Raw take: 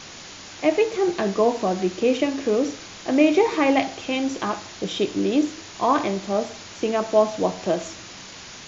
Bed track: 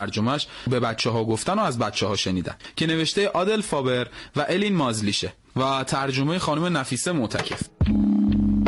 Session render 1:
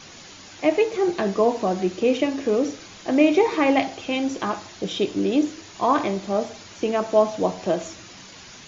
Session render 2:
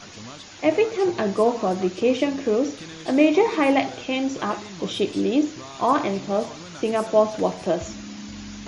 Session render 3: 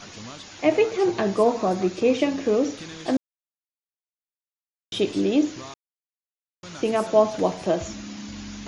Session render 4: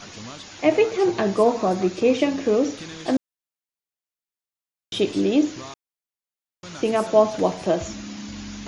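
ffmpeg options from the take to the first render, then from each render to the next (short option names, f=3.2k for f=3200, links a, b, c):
-af "afftdn=nr=6:nf=-41"
-filter_complex "[1:a]volume=-18dB[a];[0:a][a]amix=inputs=2:normalize=0"
-filter_complex "[0:a]asettb=1/sr,asplit=3[a][b][c];[a]atrim=end=1.444[d];[b]atrim=start=1.44:end=2.19,asetpts=PTS-STARTPTS,afade=t=in:d=0.004:c=qsin,afade=t=out:st=0.746:d=0.004:c=qsin,bandreject=f=3k:w=11[e];[c]atrim=start=2.186[f];[d][e]acrossfade=d=0.004:c1=hsin:c2=qsin[g];[g][f]acrossfade=d=0.004:c1=qsin:c2=hsin,asplit=5[h][i][j][k][l];[h]atrim=end=3.17,asetpts=PTS-STARTPTS,afade=t=out:st=3.166:d=0.004:c=hsin[m];[i]atrim=start=3.17:end=4.92,asetpts=PTS-STARTPTS,volume=0[n];[j]atrim=start=4.92:end=5.74,asetpts=PTS-STARTPTS,afade=t=in:d=0.004:c=hsin,afade=t=out:st=0.816:d=0.004:c=hsin[o];[k]atrim=start=5.74:end=6.63,asetpts=PTS-STARTPTS,volume=0[p];[l]atrim=start=6.63,asetpts=PTS-STARTPTS,afade=t=in:d=0.004:c=hsin[q];[m][n][o][p][q]concat=n=5:v=0:a=1"
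-af "volume=1.5dB"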